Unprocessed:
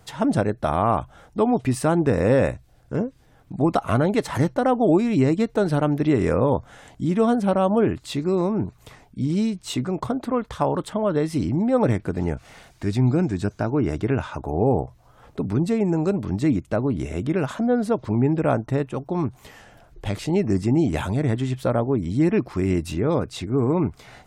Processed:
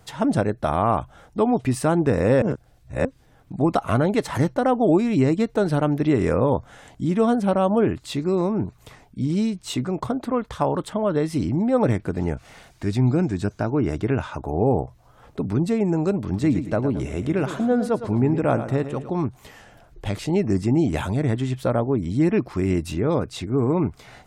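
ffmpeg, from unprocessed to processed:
-filter_complex "[0:a]asettb=1/sr,asplit=3[a][b][c];[a]atrim=end=16.184[d];[b]atrim=start=16.18:end=19.1,asetpts=PTS-STARTPTS,afade=t=in:d=0.004:c=qsin,afade=t=out:st=2.916:d=0.004:c=qsin,aecho=1:1:110|220|330|440:0.282|0.11|0.0429|0.0167,atrim=end_sample=128772[e];[c]atrim=start=19.096[f];[d][e]acrossfade=d=0.004:c1=hsin:c2=qsin[g];[g][f]acrossfade=d=0.004:c1=qsin:c2=hsin,asplit=3[h][i][j];[h]atrim=end=2.422[k];[i]atrim=start=2.418:end=3.052,asetpts=PTS-STARTPTS,areverse[l];[j]atrim=start=3.048[m];[k][l]acrossfade=d=0.004:c1=hsin:c2=hsin[n];[n][m]acrossfade=d=0.004:c1=hsin:c2=hsin"

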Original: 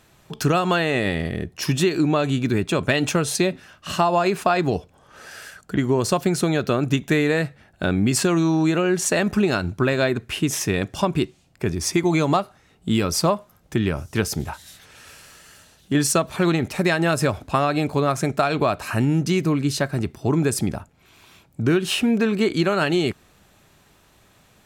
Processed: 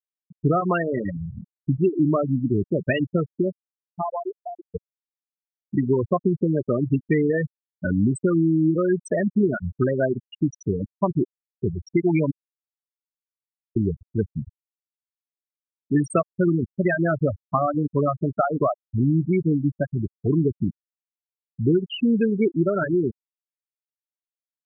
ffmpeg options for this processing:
-filter_complex "[0:a]asplit=4[a][b][c][d];[a]atrim=end=4.74,asetpts=PTS-STARTPTS,afade=t=out:st=3.1:d=1.64:silence=0.199526[e];[b]atrim=start=4.74:end=12.31,asetpts=PTS-STARTPTS,afade=t=in:d=0.004:c=hsin:silence=0.199526,afade=t=out:st=7.566:d=0.004:c=hsin[f];[c]atrim=start=12.31:end=13.76,asetpts=PTS-STARTPTS,volume=0[g];[d]atrim=start=13.76,asetpts=PTS-STARTPTS,afade=t=in:d=0.004:c=hsin[h];[e][f][g][h]concat=n=4:v=0:a=1,afftfilt=real='re*gte(hypot(re,im),0.355)':imag='im*gte(hypot(re,im),0.355)':win_size=1024:overlap=0.75"

